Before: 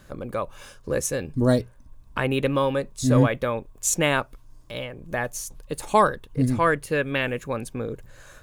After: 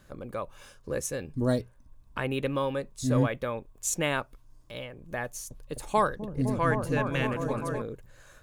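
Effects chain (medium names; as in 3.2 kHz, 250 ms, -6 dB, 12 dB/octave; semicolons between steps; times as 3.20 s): 5.25–7.82 s: delay with an opening low-pass 256 ms, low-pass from 200 Hz, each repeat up 1 oct, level 0 dB; trim -6.5 dB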